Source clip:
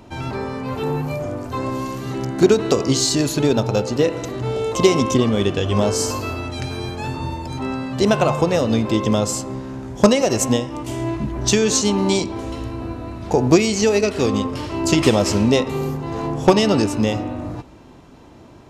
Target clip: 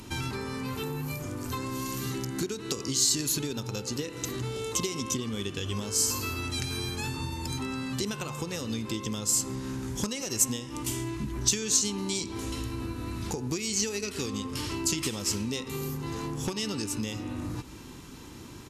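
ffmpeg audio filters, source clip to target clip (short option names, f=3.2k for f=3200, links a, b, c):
-af "acompressor=threshold=-30dB:ratio=6,aemphasis=mode=production:type=75kf,aresample=32000,aresample=44100,equalizer=f=650:t=o:w=0.58:g=-14.5"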